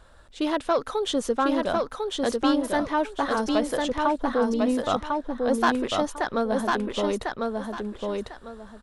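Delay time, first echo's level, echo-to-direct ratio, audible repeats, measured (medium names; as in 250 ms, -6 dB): 1049 ms, -3.0 dB, -3.0 dB, 2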